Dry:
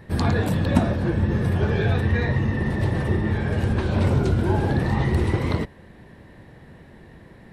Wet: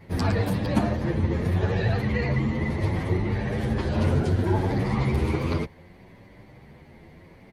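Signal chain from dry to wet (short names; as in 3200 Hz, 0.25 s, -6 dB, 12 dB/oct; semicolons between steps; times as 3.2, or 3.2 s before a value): formant shift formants +2 st; vibrato 13 Hz 62 cents; endless flanger 9 ms +0.69 Hz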